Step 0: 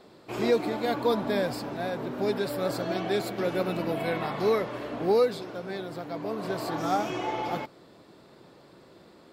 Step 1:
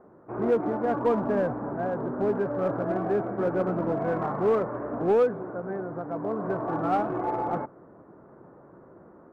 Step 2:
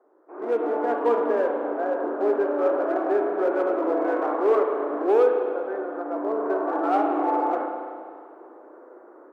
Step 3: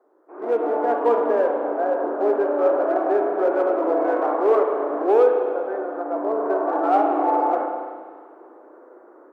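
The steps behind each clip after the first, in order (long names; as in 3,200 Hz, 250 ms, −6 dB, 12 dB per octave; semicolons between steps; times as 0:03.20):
Butterworth low-pass 1,500 Hz 36 dB per octave; automatic gain control gain up to 3 dB; in parallel at −5 dB: hard clipping −23.5 dBFS, distortion −8 dB; on the sum: level −4 dB
Butterworth high-pass 290 Hz 48 dB per octave; automatic gain control gain up to 11 dB; spring reverb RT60 2.1 s, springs 34/50 ms, chirp 45 ms, DRR 3 dB; level −8 dB
dynamic equaliser 690 Hz, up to +5 dB, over −36 dBFS, Q 1.2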